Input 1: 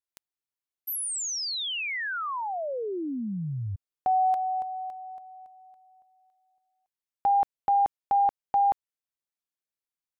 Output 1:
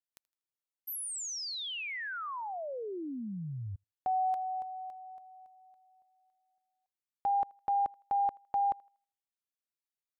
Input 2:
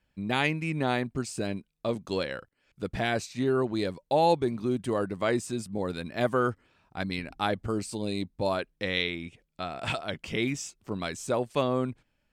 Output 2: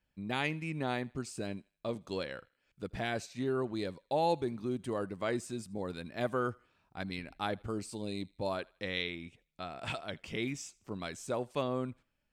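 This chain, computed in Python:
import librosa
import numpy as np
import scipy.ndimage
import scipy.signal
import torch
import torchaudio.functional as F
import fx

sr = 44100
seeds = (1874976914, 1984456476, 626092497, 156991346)

y = fx.echo_thinned(x, sr, ms=80, feedback_pct=39, hz=660.0, wet_db=-24)
y = y * librosa.db_to_amplitude(-7.0)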